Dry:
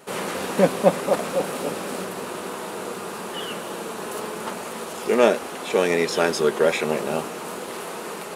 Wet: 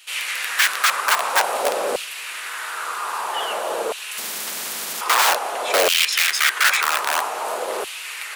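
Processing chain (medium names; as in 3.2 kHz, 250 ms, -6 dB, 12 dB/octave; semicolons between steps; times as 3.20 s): integer overflow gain 17 dB; LFO high-pass saw down 0.51 Hz 500–2900 Hz; 4.18–5.01 s: spectrum-flattening compressor 10:1; trim +4.5 dB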